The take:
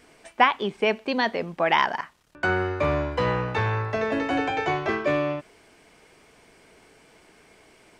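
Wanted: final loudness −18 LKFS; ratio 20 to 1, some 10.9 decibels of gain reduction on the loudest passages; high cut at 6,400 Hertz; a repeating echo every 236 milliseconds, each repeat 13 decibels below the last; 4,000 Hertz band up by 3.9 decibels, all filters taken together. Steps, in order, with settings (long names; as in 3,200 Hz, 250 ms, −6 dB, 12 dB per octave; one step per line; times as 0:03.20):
low-pass filter 6,400 Hz
parametric band 4,000 Hz +6 dB
downward compressor 20 to 1, threshold −23 dBFS
repeating echo 236 ms, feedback 22%, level −13 dB
level +10.5 dB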